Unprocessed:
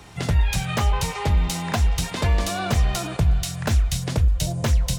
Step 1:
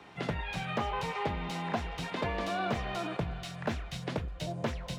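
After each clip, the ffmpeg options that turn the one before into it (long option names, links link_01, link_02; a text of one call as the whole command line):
ffmpeg -i in.wav -filter_complex "[0:a]acrossover=split=170 3800:gain=0.126 1 0.126[link_01][link_02][link_03];[link_01][link_02][link_03]amix=inputs=3:normalize=0,acrossover=split=1000[link_04][link_05];[link_05]alimiter=level_in=3dB:limit=-24dB:level=0:latency=1:release=19,volume=-3dB[link_06];[link_04][link_06]amix=inputs=2:normalize=0,volume=-4.5dB" out.wav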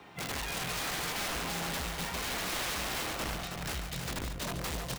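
ffmpeg -i in.wav -filter_complex "[0:a]aeval=exprs='(mod(35.5*val(0)+1,2)-1)/35.5':channel_layout=same,acrusher=bits=5:mode=log:mix=0:aa=0.000001,asplit=2[link_01][link_02];[link_02]aecho=0:1:141|319:0.355|0.531[link_03];[link_01][link_03]amix=inputs=2:normalize=0" out.wav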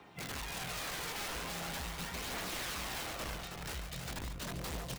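ffmpeg -i in.wav -af "aphaser=in_gain=1:out_gain=1:delay=2.4:decay=0.22:speed=0.42:type=triangular,volume=-5.5dB" out.wav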